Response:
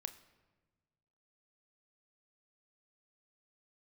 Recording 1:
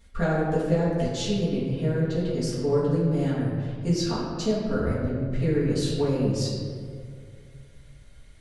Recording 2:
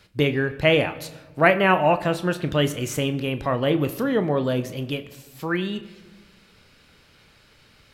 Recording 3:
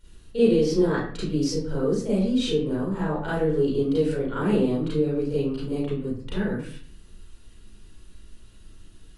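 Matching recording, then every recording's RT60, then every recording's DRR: 2; 2.3, 1.3, 0.50 seconds; −10.0, 9.5, −10.0 decibels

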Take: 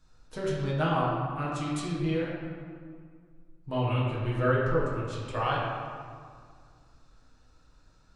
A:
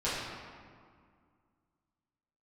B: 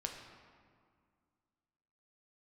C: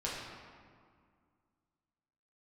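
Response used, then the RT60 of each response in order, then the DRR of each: C; 2.0, 2.0, 2.0 seconds; −11.5, 2.0, −6.5 decibels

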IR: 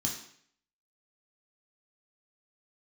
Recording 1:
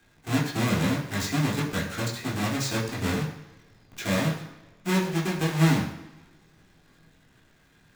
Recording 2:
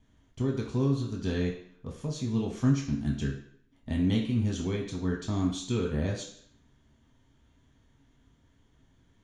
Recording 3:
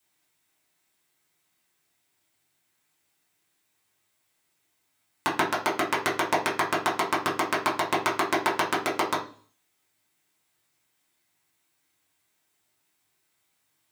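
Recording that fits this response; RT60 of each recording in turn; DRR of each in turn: 2; non-exponential decay, 0.60 s, 0.45 s; −4.0, −2.5, −6.0 decibels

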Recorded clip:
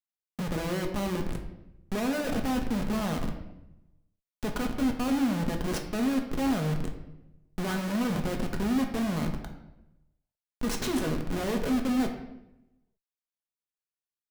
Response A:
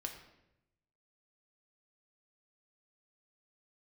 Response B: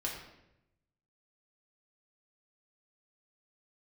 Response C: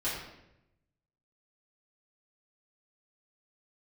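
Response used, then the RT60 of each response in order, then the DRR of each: A; 0.85, 0.85, 0.85 seconds; 2.5, −3.0, −10.5 decibels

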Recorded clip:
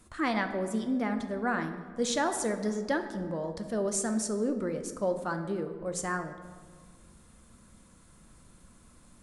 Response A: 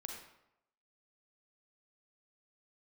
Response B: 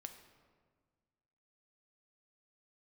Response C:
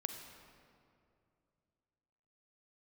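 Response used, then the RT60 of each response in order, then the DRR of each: B; 0.85, 1.6, 2.5 seconds; 1.0, 6.5, 5.5 decibels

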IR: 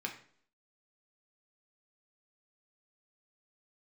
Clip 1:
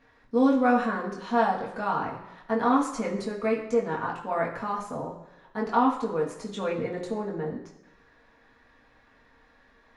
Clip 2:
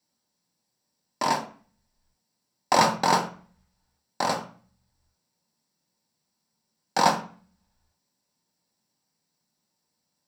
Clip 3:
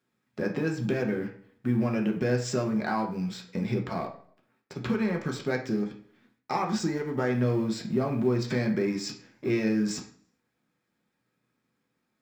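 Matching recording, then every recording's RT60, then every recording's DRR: 3; 1.0, 0.40, 0.55 seconds; −2.5, 2.0, 1.0 decibels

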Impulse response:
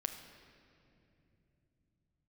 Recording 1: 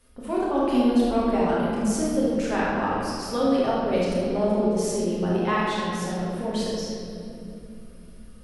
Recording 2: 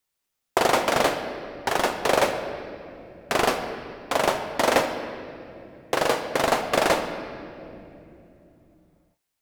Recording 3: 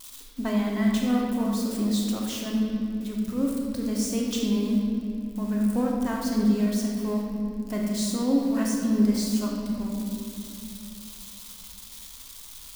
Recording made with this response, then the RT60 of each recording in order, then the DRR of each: 2; 2.8, 2.8, 2.8 seconds; −7.5, 6.0, −2.0 decibels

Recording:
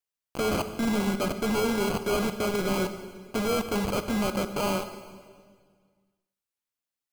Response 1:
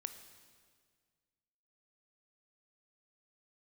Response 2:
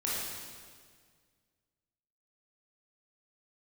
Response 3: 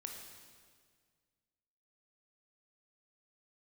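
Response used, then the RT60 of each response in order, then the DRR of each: 1; 1.8, 1.8, 1.8 seconds; 9.0, −7.0, 2.0 decibels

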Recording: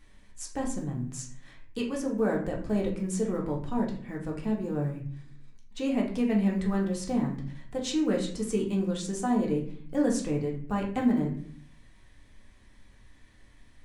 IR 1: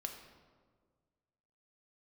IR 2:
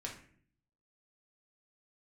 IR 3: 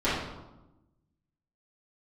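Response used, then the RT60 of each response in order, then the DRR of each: 2; 1.7, 0.55, 1.0 seconds; 3.5, −2.0, −14.0 decibels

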